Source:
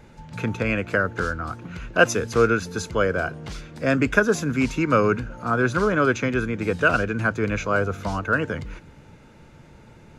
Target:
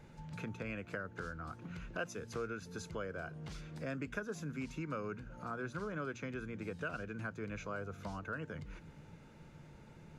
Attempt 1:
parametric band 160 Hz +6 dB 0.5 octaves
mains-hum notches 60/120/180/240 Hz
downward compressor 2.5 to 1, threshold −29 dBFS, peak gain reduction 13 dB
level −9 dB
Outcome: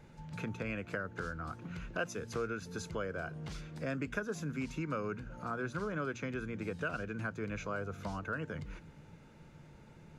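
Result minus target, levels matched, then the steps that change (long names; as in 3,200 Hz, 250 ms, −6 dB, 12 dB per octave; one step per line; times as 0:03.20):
downward compressor: peak gain reduction −3.5 dB
change: downward compressor 2.5 to 1, threshold −35 dBFS, peak gain reduction 16.5 dB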